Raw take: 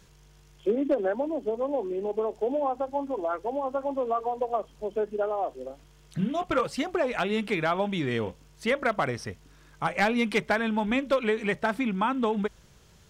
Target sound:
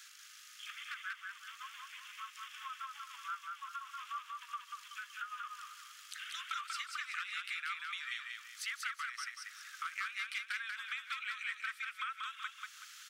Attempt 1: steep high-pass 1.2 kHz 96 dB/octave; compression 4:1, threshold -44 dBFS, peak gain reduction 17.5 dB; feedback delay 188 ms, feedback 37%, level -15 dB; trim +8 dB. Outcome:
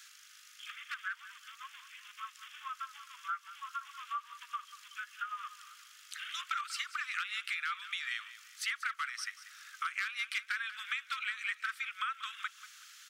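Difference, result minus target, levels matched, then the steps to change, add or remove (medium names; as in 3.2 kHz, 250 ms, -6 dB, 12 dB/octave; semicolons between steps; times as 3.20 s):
echo-to-direct -11.5 dB; compression: peak gain reduction -5 dB
change: compression 4:1, threshold -50.5 dBFS, peak gain reduction 22 dB; change: feedback delay 188 ms, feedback 37%, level -3.5 dB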